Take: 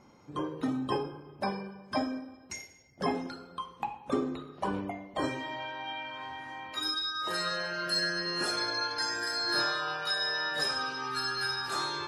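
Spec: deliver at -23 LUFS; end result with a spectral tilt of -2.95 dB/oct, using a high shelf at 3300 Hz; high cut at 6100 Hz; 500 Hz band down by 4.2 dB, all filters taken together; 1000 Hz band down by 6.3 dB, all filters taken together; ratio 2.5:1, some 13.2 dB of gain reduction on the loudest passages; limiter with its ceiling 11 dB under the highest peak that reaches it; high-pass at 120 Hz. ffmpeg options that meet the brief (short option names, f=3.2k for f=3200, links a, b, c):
-af "highpass=120,lowpass=6.1k,equalizer=f=500:t=o:g=-3.5,equalizer=f=1k:t=o:g=-8.5,highshelf=f=3.3k:g=7,acompressor=threshold=-45dB:ratio=2.5,volume=22.5dB,alimiter=limit=-15.5dB:level=0:latency=1"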